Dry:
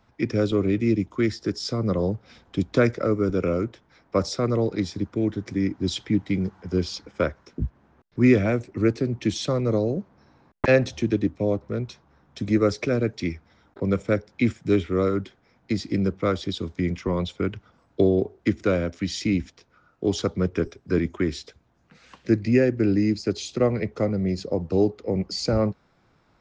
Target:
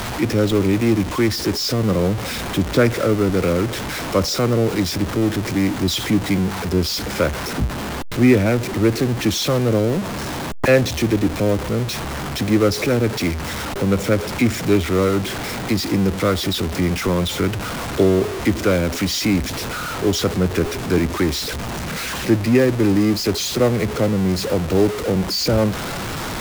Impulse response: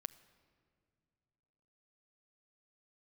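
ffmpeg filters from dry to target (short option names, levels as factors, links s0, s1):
-af "aeval=exprs='val(0)+0.5*0.0708*sgn(val(0))':c=same,atempo=1,volume=1.33"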